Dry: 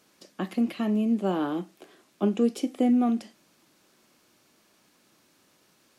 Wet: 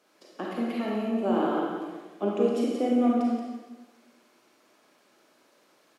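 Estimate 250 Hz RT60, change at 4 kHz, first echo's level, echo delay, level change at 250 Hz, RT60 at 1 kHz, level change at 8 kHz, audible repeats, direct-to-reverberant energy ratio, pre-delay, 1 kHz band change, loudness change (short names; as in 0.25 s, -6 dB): 1.3 s, -0.5 dB, -6.0 dB, 0.177 s, -1.5 dB, 1.1 s, n/a, 1, -4.5 dB, 31 ms, +3.5 dB, -1.0 dB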